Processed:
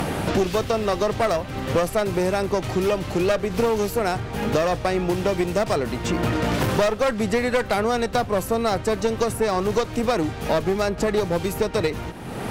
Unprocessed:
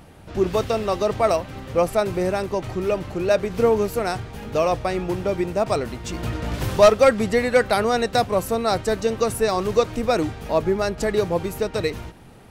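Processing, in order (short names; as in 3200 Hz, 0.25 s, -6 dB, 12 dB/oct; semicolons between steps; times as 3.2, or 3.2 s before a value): one-sided clip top -21.5 dBFS; three-band squash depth 100%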